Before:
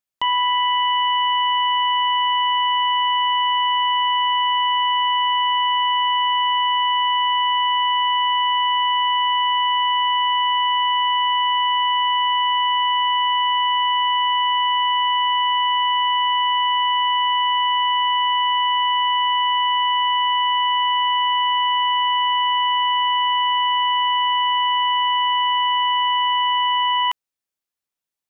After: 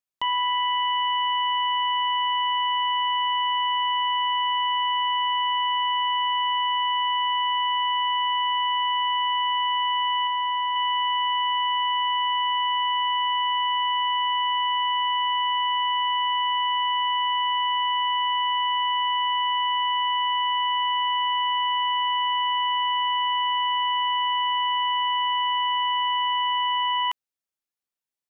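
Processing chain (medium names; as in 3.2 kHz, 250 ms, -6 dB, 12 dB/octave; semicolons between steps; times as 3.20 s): 10.27–10.76 s: low-pass 2.3 kHz 6 dB/octave; trim -5 dB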